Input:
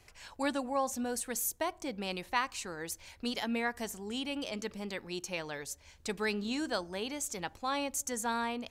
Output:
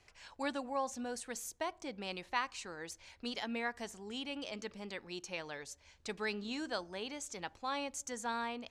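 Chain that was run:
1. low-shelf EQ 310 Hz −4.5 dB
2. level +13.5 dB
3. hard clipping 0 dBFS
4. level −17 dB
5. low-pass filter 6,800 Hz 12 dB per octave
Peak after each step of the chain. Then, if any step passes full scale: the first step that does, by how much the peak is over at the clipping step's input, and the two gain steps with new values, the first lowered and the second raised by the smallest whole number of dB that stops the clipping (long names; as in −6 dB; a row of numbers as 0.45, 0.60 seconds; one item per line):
−15.0, −1.5, −1.5, −18.5, −18.5 dBFS
no step passes full scale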